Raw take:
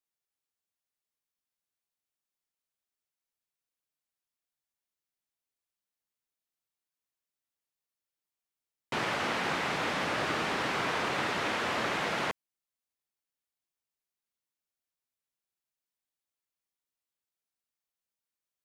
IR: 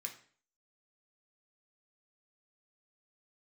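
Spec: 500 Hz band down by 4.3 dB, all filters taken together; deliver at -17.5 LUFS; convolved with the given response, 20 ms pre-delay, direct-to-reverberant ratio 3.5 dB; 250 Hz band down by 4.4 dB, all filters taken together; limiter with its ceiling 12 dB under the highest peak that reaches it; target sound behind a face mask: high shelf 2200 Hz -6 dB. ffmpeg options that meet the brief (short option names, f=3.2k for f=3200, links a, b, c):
-filter_complex "[0:a]equalizer=f=250:t=o:g=-4.5,equalizer=f=500:t=o:g=-4,alimiter=level_in=8dB:limit=-24dB:level=0:latency=1,volume=-8dB,asplit=2[a][b];[1:a]atrim=start_sample=2205,adelay=20[c];[b][c]afir=irnorm=-1:irlink=0,volume=-1dB[d];[a][d]amix=inputs=2:normalize=0,highshelf=f=2.2k:g=-6,volume=23dB"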